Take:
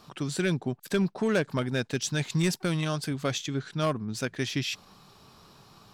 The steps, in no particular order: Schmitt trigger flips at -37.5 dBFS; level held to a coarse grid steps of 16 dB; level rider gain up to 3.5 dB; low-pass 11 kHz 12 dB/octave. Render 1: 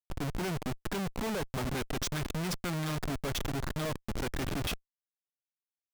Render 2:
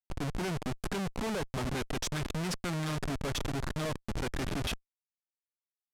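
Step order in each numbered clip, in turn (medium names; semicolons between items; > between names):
low-pass > level held to a coarse grid > level rider > Schmitt trigger; level held to a coarse grid > level rider > Schmitt trigger > low-pass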